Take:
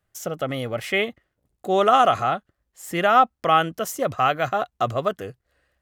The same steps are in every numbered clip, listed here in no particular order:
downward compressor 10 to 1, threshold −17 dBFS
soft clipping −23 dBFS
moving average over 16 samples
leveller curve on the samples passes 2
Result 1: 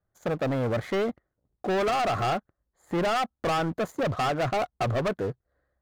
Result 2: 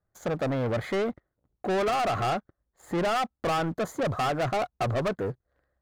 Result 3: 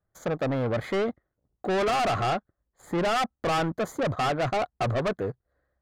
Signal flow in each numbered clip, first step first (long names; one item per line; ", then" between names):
downward compressor, then moving average, then leveller curve on the samples, then soft clipping
downward compressor, then moving average, then soft clipping, then leveller curve on the samples
leveller curve on the samples, then moving average, then soft clipping, then downward compressor